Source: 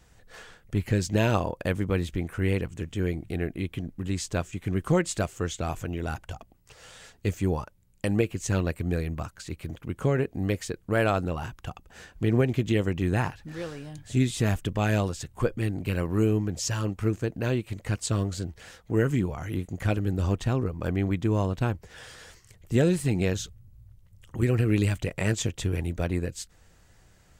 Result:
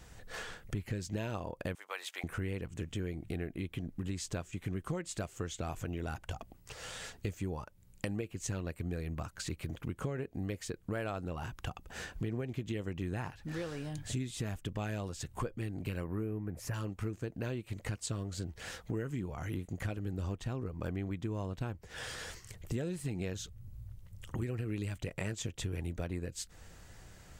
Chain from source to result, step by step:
0:01.75–0:02.24: high-pass filter 730 Hz 24 dB per octave
0:16.04–0:16.74: flat-topped bell 4,800 Hz −16 dB
downward compressor 5 to 1, threshold −40 dBFS, peak gain reduction 20 dB
level +4 dB

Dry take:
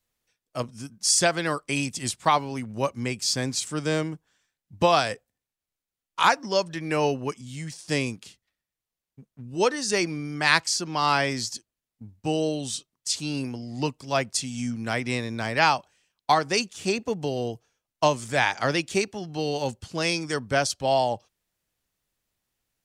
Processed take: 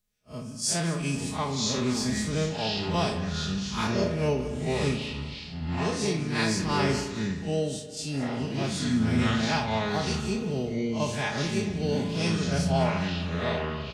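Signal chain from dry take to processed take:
spectrum smeared in time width 160 ms
phase-vocoder stretch with locked phases 0.61×
parametric band 1,000 Hz −5 dB 2.8 octaves
repeating echo 205 ms, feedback 45%, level −16.5 dB
delay with pitch and tempo change per echo 740 ms, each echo −5 semitones, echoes 2
low-shelf EQ 180 Hz +7 dB
comb filter 4.8 ms, depth 48%
convolution reverb RT60 1.3 s, pre-delay 36 ms, DRR 7.5 dB

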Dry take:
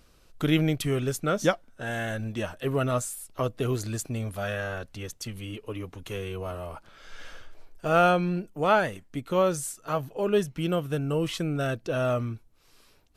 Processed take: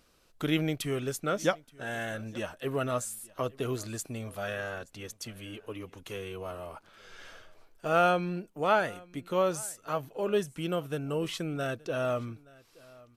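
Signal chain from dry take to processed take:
low-shelf EQ 130 Hz −10 dB
single-tap delay 874 ms −23.5 dB
level −3 dB

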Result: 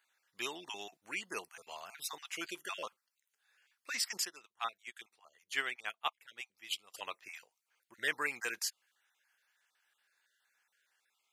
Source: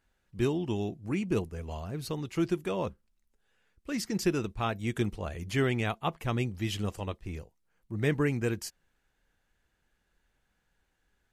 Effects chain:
time-frequency cells dropped at random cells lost 25%
high-pass filter 1,300 Hz 12 dB per octave
0:04.25–0:06.94: expander for the loud parts 2.5 to 1, over −46 dBFS
level +4.5 dB

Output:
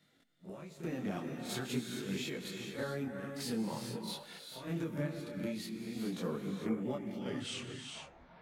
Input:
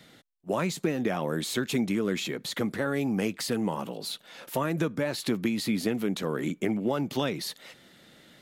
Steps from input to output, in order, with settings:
turntable brake at the end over 1.28 s
harmonic and percussive parts rebalanced percussive −8 dB
downward compressor, threshold −31 dBFS, peak gain reduction 7 dB
gate pattern "..xxx...xxxx." 151 BPM −12 dB
backwards echo 41 ms −9.5 dB
reverb whose tail is shaped and stops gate 470 ms rising, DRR 3.5 dB
micro pitch shift up and down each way 16 cents
level +1.5 dB

